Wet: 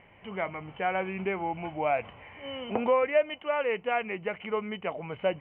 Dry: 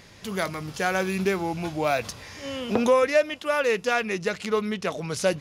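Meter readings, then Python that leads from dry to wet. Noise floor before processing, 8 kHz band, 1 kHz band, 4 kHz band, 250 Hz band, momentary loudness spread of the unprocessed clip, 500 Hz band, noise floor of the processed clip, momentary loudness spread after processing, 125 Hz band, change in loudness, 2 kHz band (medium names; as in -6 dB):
-49 dBFS, under -40 dB, -2.5 dB, -8.0 dB, -8.0 dB, 10 LU, -4.5 dB, -56 dBFS, 10 LU, -8.5 dB, -5.0 dB, -6.0 dB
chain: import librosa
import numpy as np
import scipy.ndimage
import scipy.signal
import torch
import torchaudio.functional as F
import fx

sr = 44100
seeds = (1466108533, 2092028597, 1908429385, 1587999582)

y = scipy.signal.sosfilt(scipy.signal.cheby1(6, 9, 3100.0, 'lowpass', fs=sr, output='sos'), x)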